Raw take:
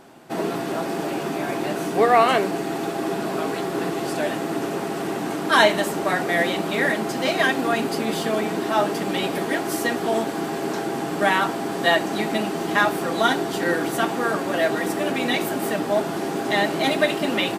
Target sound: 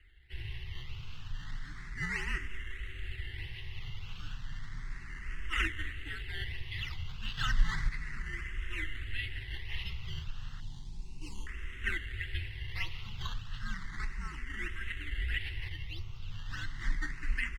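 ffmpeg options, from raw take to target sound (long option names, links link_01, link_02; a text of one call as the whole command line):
ffmpeg -i in.wav -filter_complex "[0:a]aemphasis=mode=production:type=cd,asettb=1/sr,asplit=3[link_01][link_02][link_03];[link_01]atrim=end=7.374[link_04];[link_02]atrim=start=7.37:end=7.89,asetpts=PTS-STARTPTS,afade=type=in:duration=0.004:curve=qsin,afade=type=out:start_time=0.516:duration=0.004:curve=qsin,acontrast=64[link_05];[link_03]atrim=start=7.886[link_06];[link_04][link_05]acrossfade=duration=0.004:curve1=hsin:curve2=qsin[link_07];[link_07][link_06]acrossfade=duration=0.004:curve1=qsin:curve2=hsin,asettb=1/sr,asplit=3[link_08][link_09][link_10];[link_08]atrim=end=15.684[link_11];[link_09]atrim=start=15.68:end=16.33,asetpts=PTS-STARTPTS,afade=type=in:duration=0.004:curve=qsin,afade=type=out:start_time=0.646:duration=0.004:curve=qsin,highshelf=frequency=2800:gain=-11.5[link_12];[link_10]atrim=start=16.326[link_13];[link_11][link_12]acrossfade=duration=0.004:curve1=hsin:curve2=qsin[link_14];[link_14][link_13]acrossfade=duration=0.004:curve1=qsin:curve2=hsin,acrusher=samples=11:mix=1:aa=0.000001:lfo=1:lforange=11:lforate=1.6,asplit=3[link_15][link_16][link_17];[link_15]bandpass=frequency=270:width_type=q:width=8,volume=0dB[link_18];[link_16]bandpass=frequency=2290:width_type=q:width=8,volume=-6dB[link_19];[link_17]bandpass=frequency=3010:width_type=q:width=8,volume=-9dB[link_20];[link_18][link_19][link_20]amix=inputs=3:normalize=0,afreqshift=-300,asettb=1/sr,asplit=3[link_21][link_22][link_23];[link_21]atrim=end=10.604[link_24];[link_22]atrim=start=10.6:end=11.47,asetpts=PTS-STARTPTS,afade=type=in:duration=0.004:curve=qsin,afade=type=out:start_time=0.866:duration=0.004:curve=qsin,asuperstop=centerf=1600:order=8:qfactor=0.88[link_25];[link_23]atrim=start=11.466[link_26];[link_24][link_25]acrossfade=duration=0.004:curve1=hsin:curve2=qsin[link_27];[link_27][link_26]acrossfade=duration=0.004:curve1=qsin:curve2=hsin,aecho=1:1:211|422|633:0.0841|0.037|0.0163,asplit=2[link_28][link_29];[link_29]afreqshift=0.33[link_30];[link_28][link_30]amix=inputs=2:normalize=1,volume=1.5dB" out.wav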